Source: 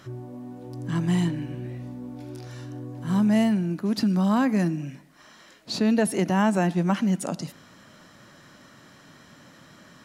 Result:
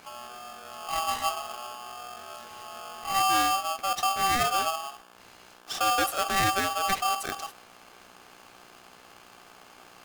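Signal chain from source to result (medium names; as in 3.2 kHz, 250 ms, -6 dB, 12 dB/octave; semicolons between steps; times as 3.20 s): hum notches 60/120/180/240/300/360/420/480/540 Hz; mains buzz 60 Hz, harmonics 13, -52 dBFS -1 dB/octave; polarity switched at an audio rate 970 Hz; trim -3.5 dB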